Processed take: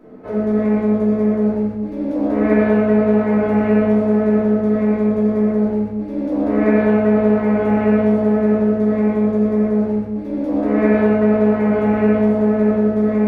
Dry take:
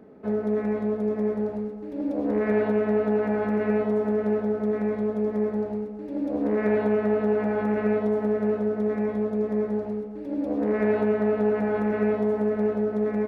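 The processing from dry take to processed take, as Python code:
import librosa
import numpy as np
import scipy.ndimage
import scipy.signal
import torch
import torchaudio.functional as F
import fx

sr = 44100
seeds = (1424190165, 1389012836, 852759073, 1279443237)

y = fx.room_shoebox(x, sr, seeds[0], volume_m3=170.0, walls='mixed', distance_m=2.9)
y = y * 10.0 ** (-1.0 / 20.0)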